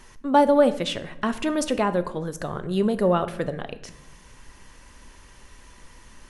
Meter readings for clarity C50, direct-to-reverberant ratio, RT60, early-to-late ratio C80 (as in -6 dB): 15.0 dB, 11.0 dB, 0.80 s, 17.5 dB